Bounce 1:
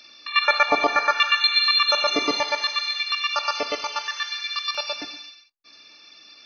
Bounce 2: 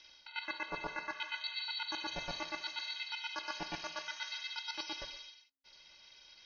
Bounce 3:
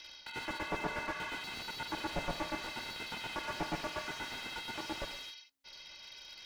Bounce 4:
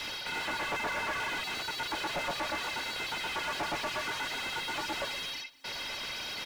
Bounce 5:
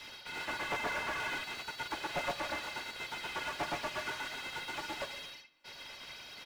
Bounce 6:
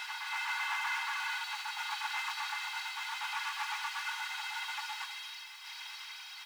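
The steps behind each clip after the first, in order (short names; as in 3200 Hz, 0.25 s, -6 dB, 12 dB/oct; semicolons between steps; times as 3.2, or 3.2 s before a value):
reverse; compressor 6:1, threshold -27 dBFS, peak gain reduction 13.5 dB; reverse; ring modulator 270 Hz; gain -7.5 dB
slew limiter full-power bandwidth 9.8 Hz; gain +8 dB
reverb removal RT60 0.51 s; overdrive pedal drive 44 dB, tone 1800 Hz, clips at -20.5 dBFS; echo 0.199 s -21.5 dB; gain -4 dB
on a send at -7.5 dB: LPF 3500 Hz + reverb, pre-delay 3 ms; on the sum: upward expander 2.5:1, over -43 dBFS
zero-crossing step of -52.5 dBFS; brick-wall FIR high-pass 750 Hz; reverse echo 0.389 s -3.5 dB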